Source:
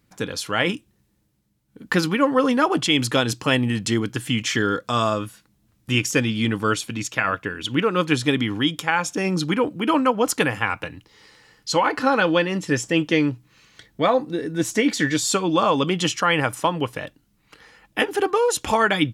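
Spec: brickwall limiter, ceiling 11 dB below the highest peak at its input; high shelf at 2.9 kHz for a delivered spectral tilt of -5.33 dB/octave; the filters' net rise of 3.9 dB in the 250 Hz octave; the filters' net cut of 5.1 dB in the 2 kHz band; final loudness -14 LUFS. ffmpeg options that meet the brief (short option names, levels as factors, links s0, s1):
-af "equalizer=f=250:t=o:g=5,equalizer=f=2000:t=o:g=-4.5,highshelf=f=2900:g=-6,volume=3.98,alimiter=limit=0.631:level=0:latency=1"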